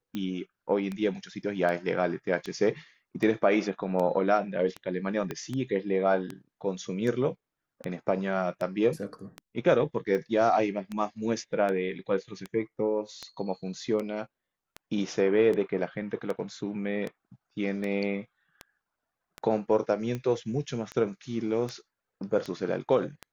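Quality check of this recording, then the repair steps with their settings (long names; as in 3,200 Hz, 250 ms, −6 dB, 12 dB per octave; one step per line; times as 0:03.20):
scratch tick 78 rpm −21 dBFS
0:05.31: click −19 dBFS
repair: click removal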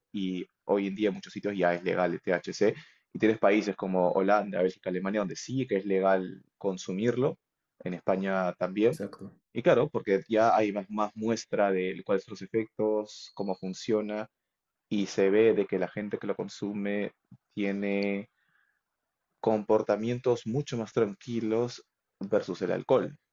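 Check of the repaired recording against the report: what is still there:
0:05.31: click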